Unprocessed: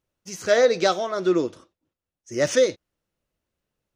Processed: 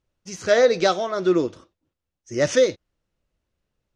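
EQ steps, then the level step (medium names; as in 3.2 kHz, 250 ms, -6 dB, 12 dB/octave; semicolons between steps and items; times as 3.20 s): low-pass 7.3 kHz 12 dB/octave; bass shelf 79 Hz +10 dB; +1.0 dB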